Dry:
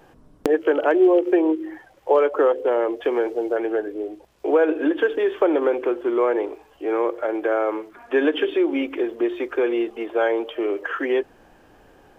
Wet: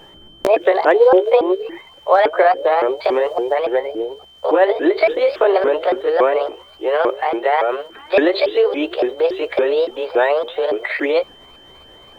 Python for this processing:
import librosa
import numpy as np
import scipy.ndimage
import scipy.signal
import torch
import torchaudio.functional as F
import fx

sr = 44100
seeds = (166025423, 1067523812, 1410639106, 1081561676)

y = fx.pitch_ramps(x, sr, semitones=7.0, every_ms=282)
y = y + 10.0 ** (-50.0 / 20.0) * np.sin(2.0 * np.pi * 3100.0 * np.arange(len(y)) / sr)
y = F.gain(torch.from_numpy(y), 6.0).numpy()